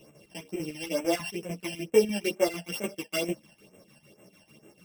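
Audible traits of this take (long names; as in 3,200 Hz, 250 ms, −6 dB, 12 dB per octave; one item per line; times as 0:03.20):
a buzz of ramps at a fixed pitch in blocks of 16 samples
phaser sweep stages 12, 2.2 Hz, lowest notch 370–4,600 Hz
chopped level 6.7 Hz, depth 65%, duty 65%
a shimmering, thickened sound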